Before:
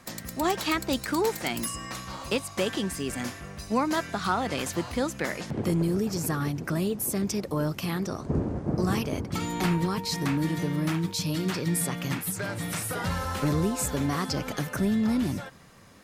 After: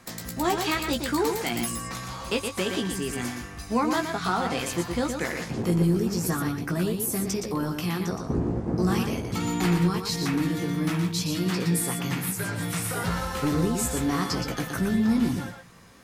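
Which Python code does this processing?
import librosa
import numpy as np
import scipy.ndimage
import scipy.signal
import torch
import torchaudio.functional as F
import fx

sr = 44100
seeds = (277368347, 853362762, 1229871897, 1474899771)

y = fx.notch(x, sr, hz=590.0, q=12.0)
y = fx.doubler(y, sr, ms=17.0, db=-6.5)
y = y + 10.0 ** (-6.0 / 20.0) * np.pad(y, (int(119 * sr / 1000.0), 0))[:len(y)]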